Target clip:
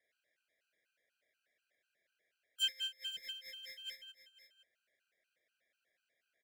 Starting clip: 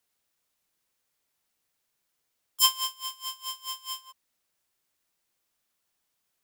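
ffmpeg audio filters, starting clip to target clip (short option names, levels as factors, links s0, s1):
-filter_complex "[0:a]acrossover=split=590 2300:gain=0.141 1 0.2[s0][s1][s2];[s0][s1][s2]amix=inputs=3:normalize=0,asplit=2[s3][s4];[s4]acompressor=threshold=0.00562:ratio=6,volume=1.26[s5];[s3][s5]amix=inputs=2:normalize=0,asplit=2[s6][s7];[s7]highpass=f=720:p=1,volume=3.55,asoftclip=type=tanh:threshold=0.15[s8];[s6][s8]amix=inputs=2:normalize=0,lowpass=f=1300:p=1,volume=0.501,asuperstop=centerf=1000:order=8:qfactor=1.1,aecho=1:1:518:0.224,afftfilt=real='re*gt(sin(2*PI*4.1*pts/sr)*(1-2*mod(floor(b*sr/1024/800),2)),0)':imag='im*gt(sin(2*PI*4.1*pts/sr)*(1-2*mod(floor(b*sr/1024/800),2)),0)':win_size=1024:overlap=0.75,volume=1.5"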